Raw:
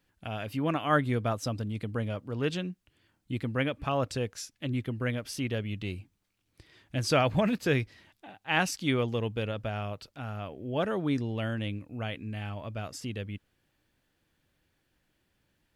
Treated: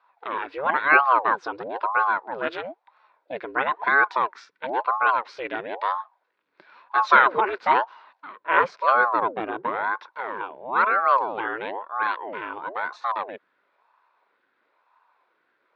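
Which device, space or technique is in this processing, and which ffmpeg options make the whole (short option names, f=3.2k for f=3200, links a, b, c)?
voice changer toy: -filter_complex "[0:a]aeval=exprs='val(0)*sin(2*PI*580*n/s+580*0.7/1*sin(2*PI*1*n/s))':c=same,highpass=490,equalizer=f=720:t=q:w=4:g=-3,equalizer=f=1k:t=q:w=4:g=9,equalizer=f=1.5k:t=q:w=4:g=9,equalizer=f=3k:t=q:w=4:g=-9,lowpass=f=3.5k:w=0.5412,lowpass=f=3.5k:w=1.3066,asettb=1/sr,asplit=3[a][b][c];[a]atrim=end=8.364[d];[b]atrim=start=8.36:end=9.84,asetpts=PTS-STARTPTS,afade=t=in:d=0.004:c=qsin,afade=t=out:st=1.476:d=0.004:c=qsin,tiltshelf=f=870:g=5.5[e];[c]atrim=start=9.836[f];[d][e]acrossfade=d=0.004:c1=hsin:c2=qsin[g];[g][f]acrossfade=d=0.004:c1=qsin:c2=hsin,volume=8.5dB"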